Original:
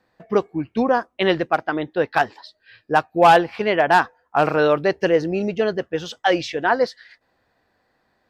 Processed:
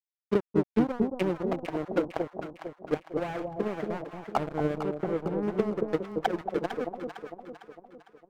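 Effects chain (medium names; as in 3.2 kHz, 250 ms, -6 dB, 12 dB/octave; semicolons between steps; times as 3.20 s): low-pass that closes with the level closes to 300 Hz, closed at -17.5 dBFS; 2.97–3.52 s: peaking EQ 230 Hz -13 dB 0.66 oct; crossover distortion -29 dBFS; 4.83–5.43 s: distance through air 480 m; echo whose repeats swap between lows and highs 227 ms, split 820 Hz, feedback 67%, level -2.5 dB; upward expansion 1.5:1, over -27 dBFS; trim +1.5 dB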